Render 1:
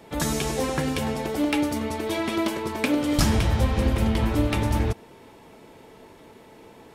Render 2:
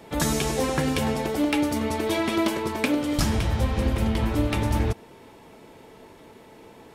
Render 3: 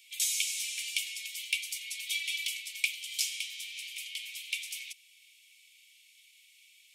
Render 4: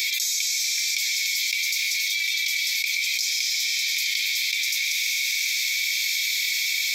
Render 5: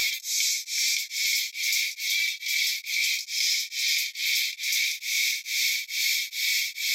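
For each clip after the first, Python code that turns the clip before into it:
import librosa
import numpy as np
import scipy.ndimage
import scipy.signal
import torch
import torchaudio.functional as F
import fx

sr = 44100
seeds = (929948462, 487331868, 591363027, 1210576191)

y1 = fx.rider(x, sr, range_db=10, speed_s=0.5)
y2 = scipy.signal.sosfilt(scipy.signal.cheby1(6, 3, 2200.0, 'highpass', fs=sr, output='sos'), y1)
y2 = F.gain(torch.from_numpy(y2), 1.5).numpy()
y3 = fx.fixed_phaser(y2, sr, hz=2900.0, stages=6)
y3 = fx.rev_plate(y3, sr, seeds[0], rt60_s=2.8, hf_ratio=0.9, predelay_ms=115, drr_db=4.5)
y3 = fx.env_flatten(y3, sr, amount_pct=100)
y3 = F.gain(torch.from_numpy(y3), 4.5).numpy()
y4 = fx.vibrato(y3, sr, rate_hz=14.0, depth_cents=30.0)
y4 = fx.room_shoebox(y4, sr, seeds[1], volume_m3=47.0, walls='mixed', distance_m=0.32)
y4 = y4 * np.abs(np.cos(np.pi * 2.3 * np.arange(len(y4)) / sr))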